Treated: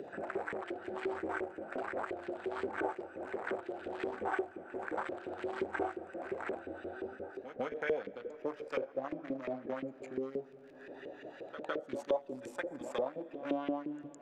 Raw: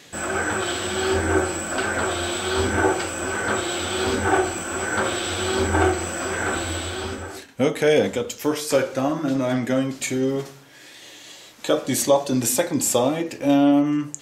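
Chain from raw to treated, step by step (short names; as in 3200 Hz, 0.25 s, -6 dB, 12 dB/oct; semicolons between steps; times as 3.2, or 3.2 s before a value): Wiener smoothing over 41 samples; upward compressor, threshold -39 dBFS; crackle 69/s -49 dBFS; LFO band-pass saw up 5.7 Hz 380–2300 Hz; pre-echo 0.159 s -20 dB; on a send at -22.5 dB: reverb RT60 4.2 s, pre-delay 45 ms; on the sum: three-band squash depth 70%; gain -5.5 dB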